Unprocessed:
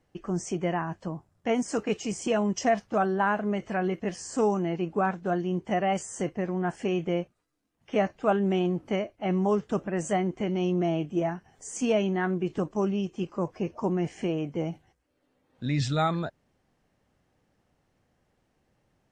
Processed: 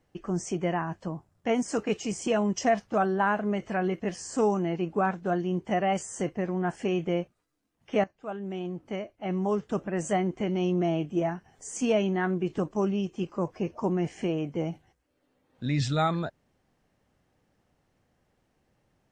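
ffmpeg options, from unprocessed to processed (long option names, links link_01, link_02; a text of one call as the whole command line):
ffmpeg -i in.wav -filter_complex "[0:a]asplit=2[link_01][link_02];[link_01]atrim=end=8.04,asetpts=PTS-STARTPTS,afade=type=out:start_time=8.036:duration=0.004:curve=hsin:silence=0.141254[link_03];[link_02]atrim=start=8.04,asetpts=PTS-STARTPTS,afade=type=in:duration=2.07:silence=0.141254[link_04];[link_03][link_04]concat=n=2:v=0:a=1" out.wav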